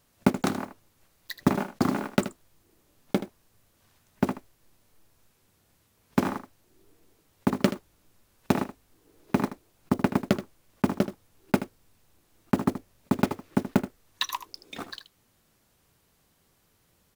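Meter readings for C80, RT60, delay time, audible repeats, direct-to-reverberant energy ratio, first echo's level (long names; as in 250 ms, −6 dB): no reverb audible, no reverb audible, 78 ms, 1, no reverb audible, −12.5 dB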